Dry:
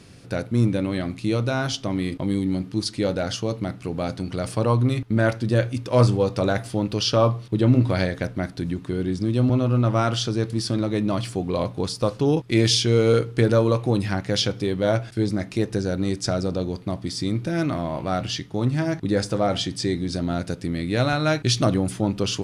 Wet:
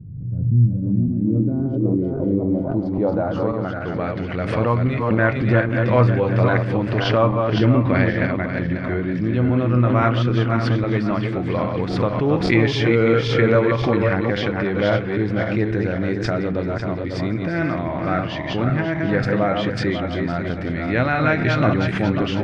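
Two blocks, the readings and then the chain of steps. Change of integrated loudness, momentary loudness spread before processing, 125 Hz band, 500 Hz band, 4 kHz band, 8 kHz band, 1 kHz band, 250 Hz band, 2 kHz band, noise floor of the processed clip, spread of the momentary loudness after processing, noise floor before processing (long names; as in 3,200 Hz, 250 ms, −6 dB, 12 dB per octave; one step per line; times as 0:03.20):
+3.0 dB, 9 LU, +3.5 dB, +3.0 dB, −4.5 dB, below −15 dB, +5.0 dB, +3.5 dB, +8.0 dB, −26 dBFS, 7 LU, −42 dBFS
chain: feedback delay that plays each chunk backwards 271 ms, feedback 55%, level −4 dB
low-pass filter sweep 130 Hz → 2,000 Hz, 0:00.51–0:04.19
background raised ahead of every attack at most 52 dB per second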